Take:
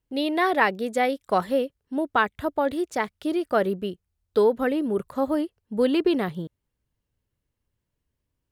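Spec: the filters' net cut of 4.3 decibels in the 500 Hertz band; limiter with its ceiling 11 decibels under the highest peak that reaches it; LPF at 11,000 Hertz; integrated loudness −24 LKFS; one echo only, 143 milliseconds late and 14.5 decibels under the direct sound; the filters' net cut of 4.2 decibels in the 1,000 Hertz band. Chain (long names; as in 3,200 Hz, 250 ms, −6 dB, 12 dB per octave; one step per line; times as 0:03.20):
low-pass filter 11,000 Hz
parametric band 500 Hz −4.5 dB
parametric band 1,000 Hz −4 dB
brickwall limiter −19.5 dBFS
single-tap delay 143 ms −14.5 dB
level +6 dB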